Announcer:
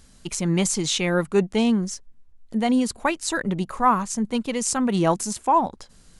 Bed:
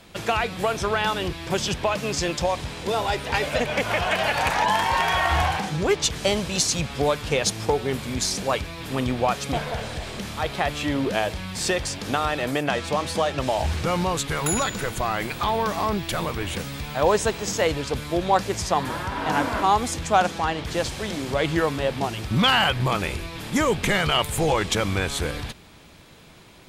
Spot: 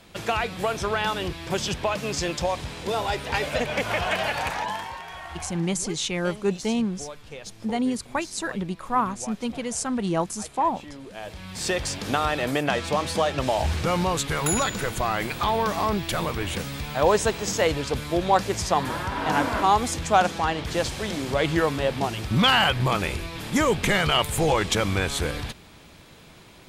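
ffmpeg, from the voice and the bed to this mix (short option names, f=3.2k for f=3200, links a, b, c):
-filter_complex "[0:a]adelay=5100,volume=-4.5dB[a];[1:a]volume=15dB,afade=t=out:st=4.13:d=0.87:silence=0.177828,afade=t=in:st=11.14:d=0.76:silence=0.141254[b];[a][b]amix=inputs=2:normalize=0"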